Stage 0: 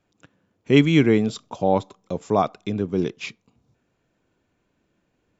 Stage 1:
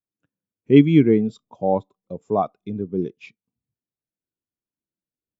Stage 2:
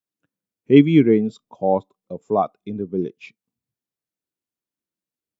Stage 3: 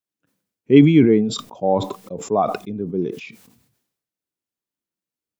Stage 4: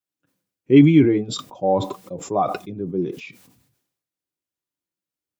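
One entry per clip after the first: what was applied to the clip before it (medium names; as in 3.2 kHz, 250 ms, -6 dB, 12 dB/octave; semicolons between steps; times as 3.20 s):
spectral contrast expander 1.5:1; trim +2 dB
bass shelf 100 Hz -10.5 dB; trim +2 dB
decay stretcher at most 67 dB/s
comb of notches 220 Hz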